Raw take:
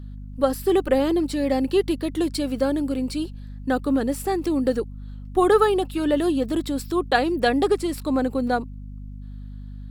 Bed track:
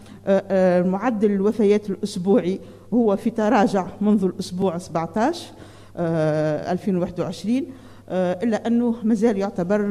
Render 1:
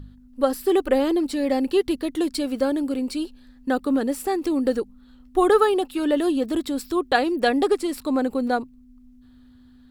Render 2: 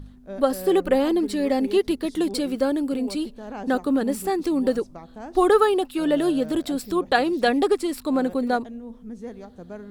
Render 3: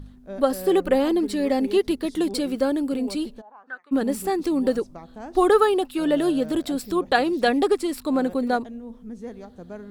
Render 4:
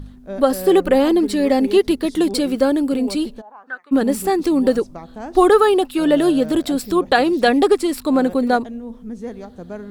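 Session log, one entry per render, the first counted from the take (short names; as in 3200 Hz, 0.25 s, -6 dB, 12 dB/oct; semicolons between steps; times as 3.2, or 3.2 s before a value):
de-hum 50 Hz, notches 4
add bed track -18 dB
3.4–3.91 band-pass 700 Hz -> 2400 Hz, Q 7.7
gain +6 dB; limiter -3 dBFS, peak gain reduction 3 dB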